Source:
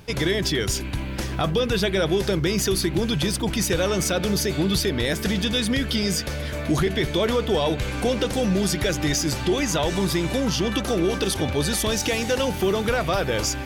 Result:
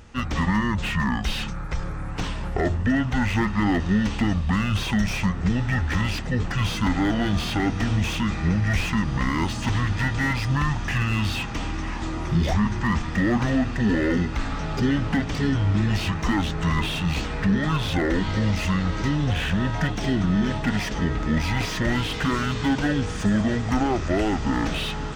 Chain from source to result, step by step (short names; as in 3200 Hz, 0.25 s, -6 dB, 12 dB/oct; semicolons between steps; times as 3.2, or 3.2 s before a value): diffused feedback echo 1.534 s, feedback 47%, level -15.5 dB; wide varispeed 0.543×; slew limiter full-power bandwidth 120 Hz